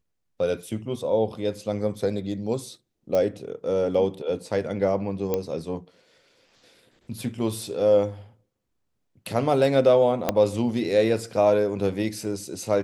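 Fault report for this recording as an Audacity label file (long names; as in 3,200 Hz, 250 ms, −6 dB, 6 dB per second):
3.150000	3.150000	click −14 dBFS
5.340000	5.340000	click −12 dBFS
10.290000	10.290000	click −7 dBFS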